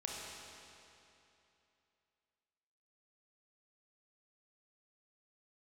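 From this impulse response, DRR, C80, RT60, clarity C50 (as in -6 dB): -3.0 dB, 0.0 dB, 2.9 s, -1.5 dB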